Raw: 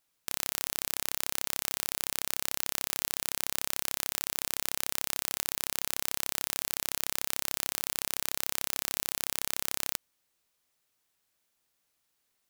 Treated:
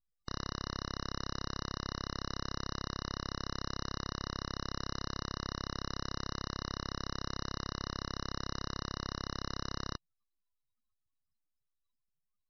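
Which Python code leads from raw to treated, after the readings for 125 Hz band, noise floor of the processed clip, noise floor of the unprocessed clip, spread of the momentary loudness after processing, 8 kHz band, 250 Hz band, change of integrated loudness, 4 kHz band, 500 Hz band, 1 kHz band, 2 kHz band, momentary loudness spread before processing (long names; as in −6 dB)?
+11.0 dB, −84 dBFS, −77 dBFS, 0 LU, −17.5 dB, +7.0 dB, −8.5 dB, −4.0 dB, +0.5 dB, +1.0 dB, −6.0 dB, 0 LU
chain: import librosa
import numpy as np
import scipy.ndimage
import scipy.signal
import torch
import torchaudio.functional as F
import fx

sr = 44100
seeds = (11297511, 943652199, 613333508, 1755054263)

y = fx.double_bandpass(x, sr, hz=1900.0, octaves=0.81)
y = np.abs(y)
y = fx.spec_gate(y, sr, threshold_db=-20, keep='strong')
y = y * librosa.db_to_amplitude(10.0)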